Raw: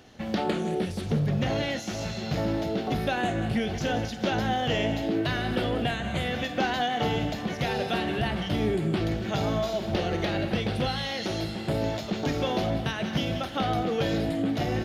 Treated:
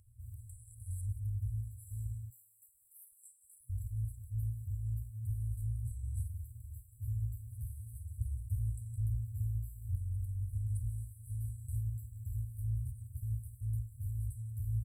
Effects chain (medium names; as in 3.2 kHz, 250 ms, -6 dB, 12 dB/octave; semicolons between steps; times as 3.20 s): 2.30–3.70 s: frequency shift +270 Hz; speakerphone echo 360 ms, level -29 dB; FFT band-reject 120–7600 Hz; trim -1 dB